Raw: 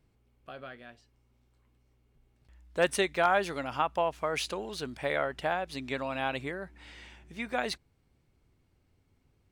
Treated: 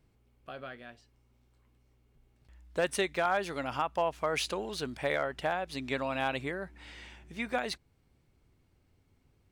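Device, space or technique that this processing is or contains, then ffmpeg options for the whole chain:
limiter into clipper: -af "alimiter=limit=-18.5dB:level=0:latency=1:release=335,asoftclip=type=hard:threshold=-20dB,volume=1dB"

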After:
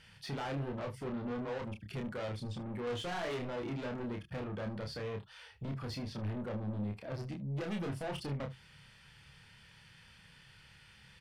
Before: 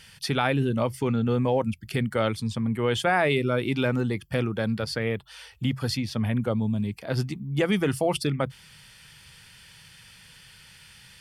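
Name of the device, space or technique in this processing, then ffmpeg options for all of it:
saturation between pre-emphasis and de-emphasis: -filter_complex "[0:a]aemphasis=mode=reproduction:type=75kf,asettb=1/sr,asplit=3[a][b][c];[a]atrim=end=2.854[d];[b]atrim=start=2.85:end=3.49,asetpts=PTS-STARTPTS,afade=t=in:d=0.004:c=qsin,afade=t=out:st=0.636:d=0.004:c=qsin,asplit=2[e][f];[f]adelay=17,volume=-4dB[g];[e][g]amix=inputs=2:normalize=0,atrim=end_sample=28224[h];[c]atrim=start=3.486[i];[d][h]acrossfade=d=0.004:c1=hsin:c2=qsin[j];[j][i]acrossfade=d=0.004:c1=qsin:c2=hsin,highshelf=f=8.4k:g=7,asoftclip=type=tanh:threshold=-31dB,highshelf=f=8.4k:g=-7,aecho=1:1:29|75:0.631|0.126,volume=-6dB"

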